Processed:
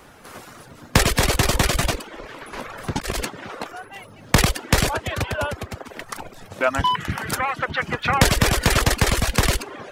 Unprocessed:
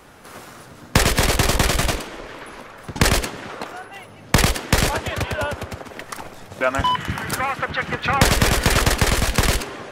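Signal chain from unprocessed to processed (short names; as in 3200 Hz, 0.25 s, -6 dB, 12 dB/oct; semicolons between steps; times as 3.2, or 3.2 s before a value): 2.53–3.2 negative-ratio compressor -22 dBFS, ratio -0.5; requantised 12-bit, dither none; reverb removal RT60 0.54 s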